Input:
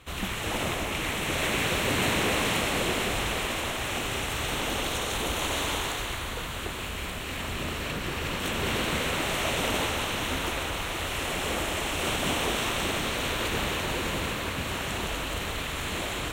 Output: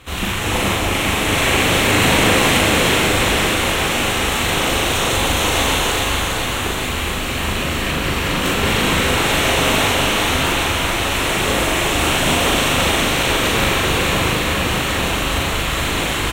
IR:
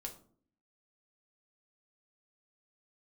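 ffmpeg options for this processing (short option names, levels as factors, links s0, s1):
-filter_complex "[0:a]bandreject=f=590:w=19,asplit=2[s0][s1];[s1]adelay=40,volume=0.794[s2];[s0][s2]amix=inputs=2:normalize=0,aecho=1:1:413|826|1239|1652|2065|2478|2891|3304:0.531|0.319|0.191|0.115|0.0688|0.0413|0.0248|0.0149,asplit=2[s3][s4];[1:a]atrim=start_sample=2205[s5];[s4][s5]afir=irnorm=-1:irlink=0,volume=0.447[s6];[s3][s6]amix=inputs=2:normalize=0,volume=2.11"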